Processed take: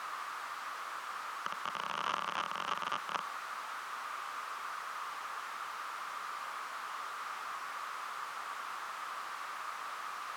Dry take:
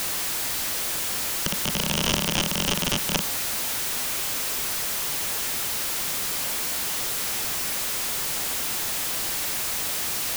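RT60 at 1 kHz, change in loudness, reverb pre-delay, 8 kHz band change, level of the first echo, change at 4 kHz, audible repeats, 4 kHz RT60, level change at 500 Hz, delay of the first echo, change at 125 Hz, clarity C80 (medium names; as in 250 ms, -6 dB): no reverb, -15.5 dB, no reverb, -27.5 dB, no echo, -19.0 dB, no echo, no reverb, -15.5 dB, no echo, under -25 dB, no reverb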